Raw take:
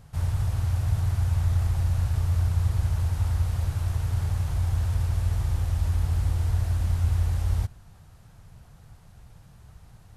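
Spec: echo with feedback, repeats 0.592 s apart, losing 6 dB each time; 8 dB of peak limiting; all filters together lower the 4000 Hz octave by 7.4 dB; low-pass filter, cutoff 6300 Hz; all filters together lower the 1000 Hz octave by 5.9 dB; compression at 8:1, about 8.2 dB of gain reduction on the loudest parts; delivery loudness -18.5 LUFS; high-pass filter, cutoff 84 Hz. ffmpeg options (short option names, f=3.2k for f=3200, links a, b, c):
-af "highpass=84,lowpass=6.3k,equalizer=f=1k:t=o:g=-7.5,equalizer=f=4k:t=o:g=-8.5,acompressor=threshold=-31dB:ratio=8,alimiter=level_in=8.5dB:limit=-24dB:level=0:latency=1,volume=-8.5dB,aecho=1:1:592|1184|1776|2368|2960|3552:0.501|0.251|0.125|0.0626|0.0313|0.0157,volume=19.5dB"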